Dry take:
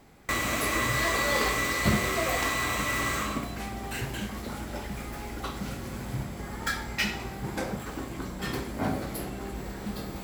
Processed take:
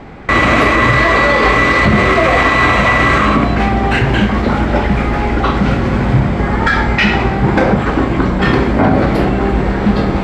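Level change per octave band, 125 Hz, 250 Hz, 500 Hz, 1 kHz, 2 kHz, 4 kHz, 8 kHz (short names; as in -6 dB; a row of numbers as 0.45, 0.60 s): +20.5, +20.5, +19.5, +19.0, +17.0, +12.0, -0.5 dB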